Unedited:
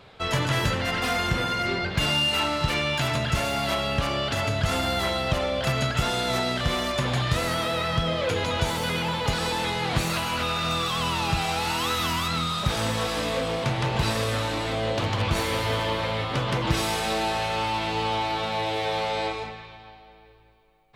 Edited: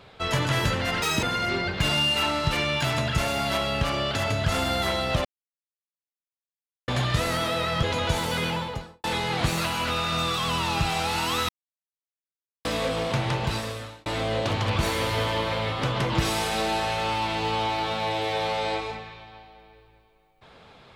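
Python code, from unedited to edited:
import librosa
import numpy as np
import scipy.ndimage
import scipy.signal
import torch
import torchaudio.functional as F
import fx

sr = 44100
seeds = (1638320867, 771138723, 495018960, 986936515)

y = fx.studio_fade_out(x, sr, start_s=8.97, length_s=0.59)
y = fx.edit(y, sr, fx.speed_span(start_s=1.02, length_s=0.38, speed=1.82),
    fx.silence(start_s=5.42, length_s=1.63),
    fx.cut(start_s=8.0, length_s=0.35),
    fx.silence(start_s=12.01, length_s=1.16),
    fx.fade_out_span(start_s=13.79, length_s=0.79), tone=tone)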